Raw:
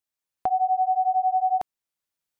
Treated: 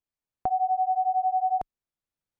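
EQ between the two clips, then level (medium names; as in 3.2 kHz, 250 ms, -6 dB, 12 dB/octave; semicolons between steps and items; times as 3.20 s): tilt EQ -2.5 dB/octave; -3.5 dB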